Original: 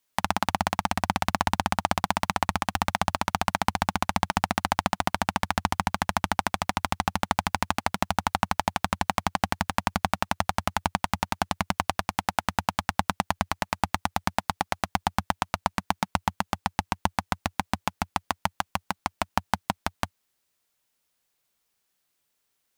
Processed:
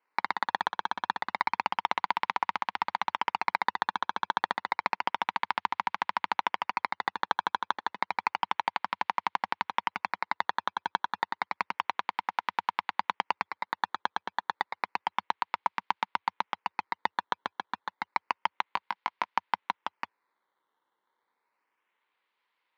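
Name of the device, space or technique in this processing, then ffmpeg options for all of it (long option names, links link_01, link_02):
circuit-bent sampling toy: -filter_complex "[0:a]acrusher=samples=12:mix=1:aa=0.000001:lfo=1:lforange=12:lforate=0.3,highpass=450,equalizer=frequency=660:width_type=q:width=4:gain=-9,equalizer=frequency=960:width_type=q:width=4:gain=8,equalizer=frequency=2100:width_type=q:width=4:gain=5,lowpass=frequency=4100:width=0.5412,lowpass=frequency=4100:width=1.3066,asettb=1/sr,asplit=3[link_01][link_02][link_03];[link_01]atrim=end=18.654[link_04];[link_02]atrim=start=18.65:end=19.36,asetpts=PTS-STARTPTS,afade=type=in:duration=0.004:curve=qsin,afade=type=out:start_time=0.706:duration=0.004:curve=qsin,asplit=2[link_05][link_06];[link_06]adelay=19,volume=-11.5dB[link_07];[link_05][link_07]amix=inputs=2:normalize=0,atrim=end_sample=31311[link_08];[link_03]atrim=start=19.356[link_09];[link_04][link_08]acrossfade=duration=0.004:curve1=hsin:curve2=qsin[link_10];[link_10][link_09]acrossfade=duration=0.004:curve1=qsin:curve2=hsin,volume=-5dB"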